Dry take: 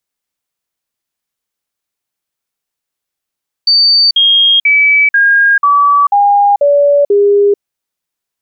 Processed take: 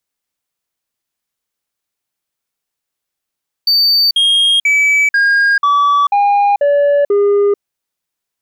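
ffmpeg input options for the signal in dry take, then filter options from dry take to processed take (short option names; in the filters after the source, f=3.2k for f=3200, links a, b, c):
-f lavfi -i "aevalsrc='0.562*clip(min(mod(t,0.49),0.44-mod(t,0.49))/0.005,0,1)*sin(2*PI*4590*pow(2,-floor(t/0.49)/2)*mod(t,0.49))':d=3.92:s=44100"
-af "asoftclip=type=tanh:threshold=-8dB"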